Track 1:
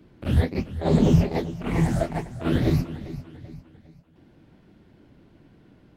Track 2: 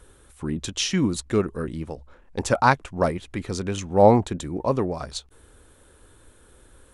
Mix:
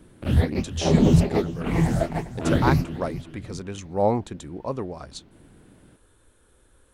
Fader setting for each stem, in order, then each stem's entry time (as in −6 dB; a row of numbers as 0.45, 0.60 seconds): +1.0, −6.5 decibels; 0.00, 0.00 seconds